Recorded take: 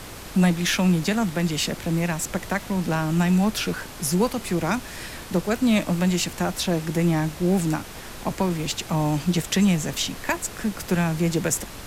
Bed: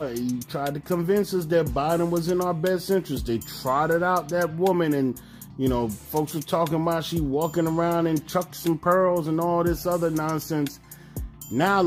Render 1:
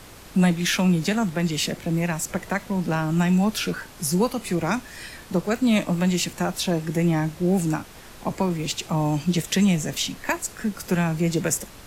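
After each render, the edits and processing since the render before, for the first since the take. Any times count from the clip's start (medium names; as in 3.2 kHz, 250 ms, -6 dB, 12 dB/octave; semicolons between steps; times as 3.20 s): noise print and reduce 6 dB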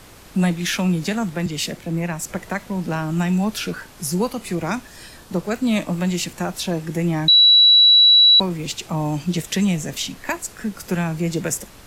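1.46–2.23 s: three bands expanded up and down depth 40%; 4.87–5.31 s: peaking EQ 2.1 kHz -8 dB 0.59 oct; 7.28–8.40 s: bleep 3.92 kHz -8 dBFS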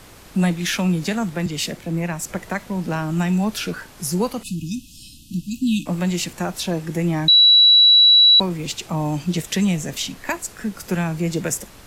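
4.43–5.86 s: brick-wall FIR band-stop 320–2500 Hz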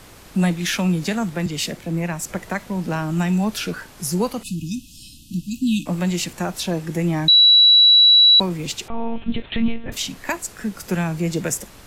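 8.88–9.92 s: monotone LPC vocoder at 8 kHz 230 Hz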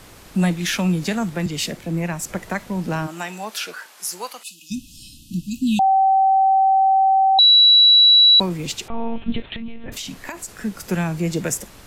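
3.06–4.70 s: high-pass 450 Hz -> 1.2 kHz; 5.79–7.39 s: bleep 771 Hz -12 dBFS; 9.42–10.58 s: compression 16:1, threshold -26 dBFS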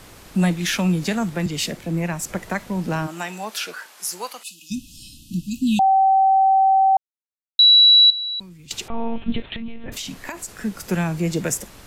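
6.97–7.59 s: mute; 8.10–8.71 s: amplifier tone stack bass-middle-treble 6-0-2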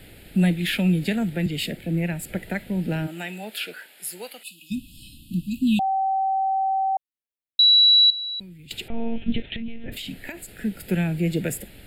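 static phaser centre 2.6 kHz, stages 4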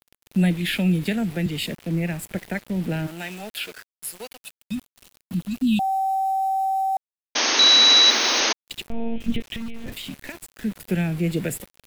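small samples zeroed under -37 dBFS; 7.35–8.53 s: painted sound noise 220–6600 Hz -21 dBFS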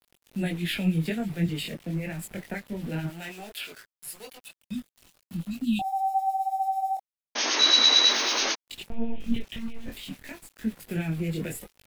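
chorus voices 4, 0.83 Hz, delay 22 ms, depth 4 ms; harmonic tremolo 9.1 Hz, depth 50%, crossover 2 kHz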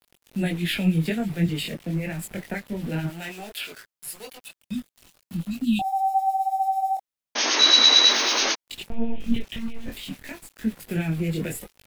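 trim +3.5 dB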